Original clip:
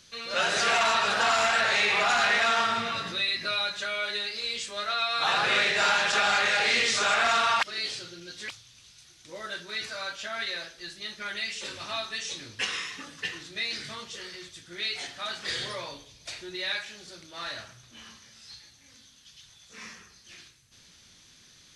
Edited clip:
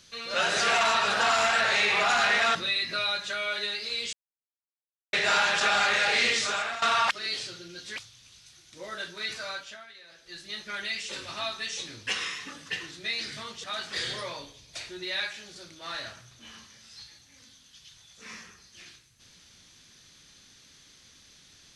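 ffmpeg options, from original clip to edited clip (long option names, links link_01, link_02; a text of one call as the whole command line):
ffmpeg -i in.wav -filter_complex "[0:a]asplit=8[link_01][link_02][link_03][link_04][link_05][link_06][link_07][link_08];[link_01]atrim=end=2.552[link_09];[link_02]atrim=start=3.068:end=4.65,asetpts=PTS-STARTPTS,afade=type=out:start_time=1.578:duration=0.004:curve=hsin[link_10];[link_03]atrim=start=4.65:end=5.65,asetpts=PTS-STARTPTS,volume=0[link_11];[link_04]atrim=start=5.65:end=7.34,asetpts=PTS-STARTPTS,afade=type=in:duration=0.004:curve=hsin,afade=type=out:start_time=1.16:duration=0.53:silence=0.16788[link_12];[link_05]atrim=start=7.34:end=10.39,asetpts=PTS-STARTPTS,afade=type=in:duration=0.004:curve=hsin:silence=0.16788,afade=type=out:start_time=2.64:duration=0.41:silence=0.133352[link_13];[link_06]atrim=start=10.39:end=10.59,asetpts=PTS-STARTPTS,volume=-17.5dB[link_14];[link_07]atrim=start=10.59:end=14.162,asetpts=PTS-STARTPTS,afade=type=in:duration=0.41:silence=0.133352[link_15];[link_08]atrim=start=15.158[link_16];[link_10][link_11][link_12][link_13][link_14][link_15]concat=n=6:v=0:a=1[link_17];[link_09][link_17]acrossfade=duration=0.004:curve1=hsin:curve2=hsin[link_18];[link_18][link_16]acrossfade=duration=0.004:curve1=hsin:curve2=hsin" out.wav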